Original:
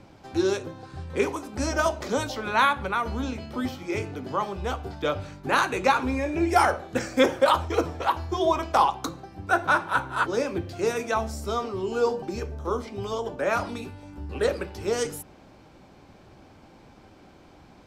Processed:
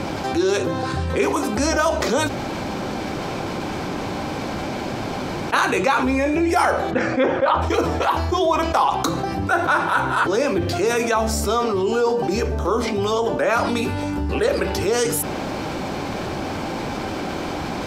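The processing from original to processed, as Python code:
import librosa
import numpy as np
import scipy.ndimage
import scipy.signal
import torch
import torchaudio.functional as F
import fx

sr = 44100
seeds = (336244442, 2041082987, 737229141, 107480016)

y = fx.lowpass(x, sr, hz=2400.0, slope=12, at=(6.9, 7.61), fade=0.02)
y = fx.edit(y, sr, fx.room_tone_fill(start_s=2.28, length_s=3.25, crossfade_s=0.02), tone=tone)
y = fx.low_shelf(y, sr, hz=120.0, db=-7.5)
y = fx.hum_notches(y, sr, base_hz=60, count=2)
y = fx.env_flatten(y, sr, amount_pct=70)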